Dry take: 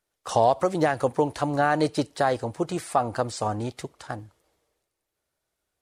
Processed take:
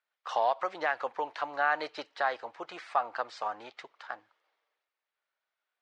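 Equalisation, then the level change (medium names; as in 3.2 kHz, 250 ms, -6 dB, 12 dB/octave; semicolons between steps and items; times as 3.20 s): high-pass 1.2 kHz 12 dB/octave; low-pass 3.2 kHz 6 dB/octave; distance through air 200 m; +3.0 dB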